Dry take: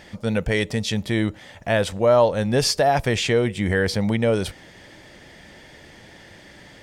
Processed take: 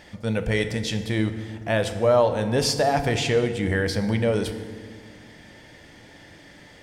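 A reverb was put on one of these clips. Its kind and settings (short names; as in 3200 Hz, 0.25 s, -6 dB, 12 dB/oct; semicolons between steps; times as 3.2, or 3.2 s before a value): FDN reverb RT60 1.8 s, low-frequency decay 1.55×, high-frequency decay 0.6×, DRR 7.5 dB; gain -3 dB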